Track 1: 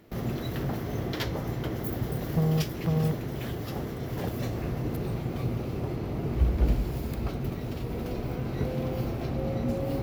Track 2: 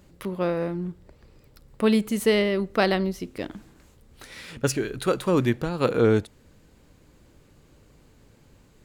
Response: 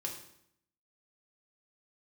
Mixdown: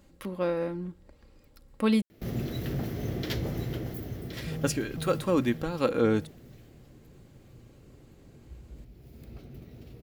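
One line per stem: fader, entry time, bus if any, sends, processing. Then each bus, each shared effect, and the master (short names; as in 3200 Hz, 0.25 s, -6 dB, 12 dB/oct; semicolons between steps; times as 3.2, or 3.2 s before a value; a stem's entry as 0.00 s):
3.65 s -0.5 dB -> 4.18 s -11 dB -> 5.42 s -11 dB -> 5.94 s -23.5 dB -> 8.89 s -23.5 dB -> 9.27 s -14 dB, 2.10 s, no send, echo send -8.5 dB, bell 1000 Hz -9 dB 1.1 oct
-4.5 dB, 0.00 s, muted 2.02–4.33, no send, no echo send, comb 3.7 ms, depth 41%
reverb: off
echo: echo 1.07 s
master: dry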